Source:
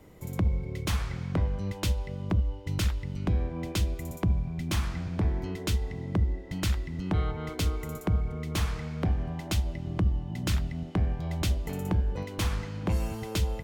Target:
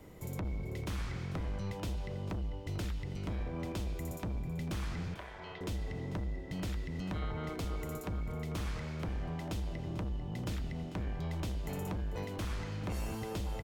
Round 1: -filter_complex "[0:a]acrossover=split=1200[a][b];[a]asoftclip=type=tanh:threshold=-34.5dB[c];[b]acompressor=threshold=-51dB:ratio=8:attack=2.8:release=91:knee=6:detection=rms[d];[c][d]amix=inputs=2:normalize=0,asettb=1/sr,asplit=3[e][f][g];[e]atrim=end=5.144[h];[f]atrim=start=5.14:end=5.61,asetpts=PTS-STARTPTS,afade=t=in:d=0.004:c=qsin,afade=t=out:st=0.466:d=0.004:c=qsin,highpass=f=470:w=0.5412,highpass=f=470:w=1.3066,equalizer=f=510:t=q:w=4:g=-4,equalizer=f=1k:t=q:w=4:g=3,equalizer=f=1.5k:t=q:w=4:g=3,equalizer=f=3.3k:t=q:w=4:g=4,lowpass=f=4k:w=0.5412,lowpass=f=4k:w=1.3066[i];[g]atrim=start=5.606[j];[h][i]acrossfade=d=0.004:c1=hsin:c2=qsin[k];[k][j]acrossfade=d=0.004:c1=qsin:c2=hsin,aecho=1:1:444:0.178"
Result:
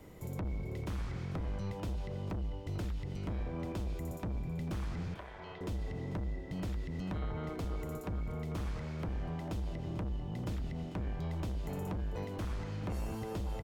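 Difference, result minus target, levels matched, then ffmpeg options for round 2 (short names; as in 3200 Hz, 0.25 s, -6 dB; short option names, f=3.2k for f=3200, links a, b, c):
compressor: peak gain reduction +6.5 dB
-filter_complex "[0:a]acrossover=split=1200[a][b];[a]asoftclip=type=tanh:threshold=-34.5dB[c];[b]acompressor=threshold=-43.5dB:ratio=8:attack=2.8:release=91:knee=6:detection=rms[d];[c][d]amix=inputs=2:normalize=0,asettb=1/sr,asplit=3[e][f][g];[e]atrim=end=5.144[h];[f]atrim=start=5.14:end=5.61,asetpts=PTS-STARTPTS,afade=t=in:d=0.004:c=qsin,afade=t=out:st=0.466:d=0.004:c=qsin,highpass=f=470:w=0.5412,highpass=f=470:w=1.3066,equalizer=f=510:t=q:w=4:g=-4,equalizer=f=1k:t=q:w=4:g=3,equalizer=f=1.5k:t=q:w=4:g=3,equalizer=f=3.3k:t=q:w=4:g=4,lowpass=f=4k:w=0.5412,lowpass=f=4k:w=1.3066[i];[g]atrim=start=5.606[j];[h][i]acrossfade=d=0.004:c1=hsin:c2=qsin[k];[k][j]acrossfade=d=0.004:c1=qsin:c2=hsin,aecho=1:1:444:0.178"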